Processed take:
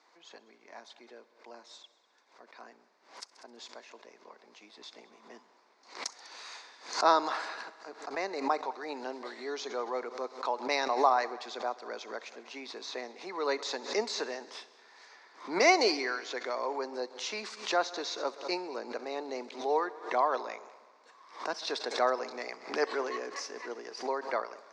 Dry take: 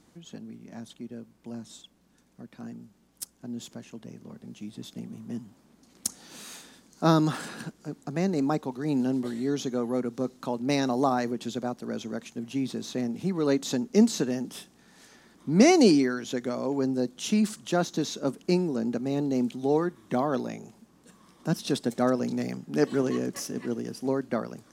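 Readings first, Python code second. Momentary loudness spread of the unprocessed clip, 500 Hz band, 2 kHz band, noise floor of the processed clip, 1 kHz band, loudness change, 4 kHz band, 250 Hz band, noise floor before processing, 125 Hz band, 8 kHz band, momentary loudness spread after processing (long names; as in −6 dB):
19 LU, −4.5 dB, +3.0 dB, −65 dBFS, +2.5 dB, −5.0 dB, 0.0 dB, −17.0 dB, −62 dBFS, below −30 dB, −6.0 dB, 22 LU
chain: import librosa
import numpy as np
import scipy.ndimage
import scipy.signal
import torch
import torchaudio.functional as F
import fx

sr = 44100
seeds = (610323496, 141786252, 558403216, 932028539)

p1 = fx.cabinet(x, sr, low_hz=480.0, low_slope=24, high_hz=5400.0, hz=(540.0, 1000.0, 2100.0, 3100.0, 4500.0), db=(-3, 7, 5, -7, 3))
p2 = p1 + fx.echo_heads(p1, sr, ms=66, heads='all three', feedback_pct=52, wet_db=-24, dry=0)
y = fx.pre_swell(p2, sr, db_per_s=130.0)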